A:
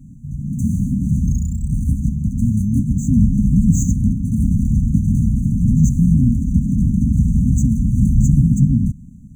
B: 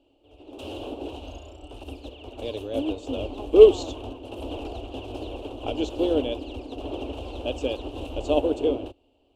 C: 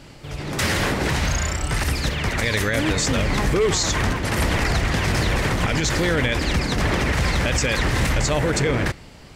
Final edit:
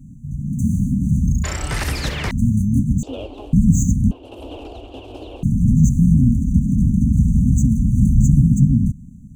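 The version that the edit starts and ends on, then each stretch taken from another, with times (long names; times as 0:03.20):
A
0:01.44–0:02.31: punch in from C
0:03.03–0:03.53: punch in from B
0:04.11–0:05.43: punch in from B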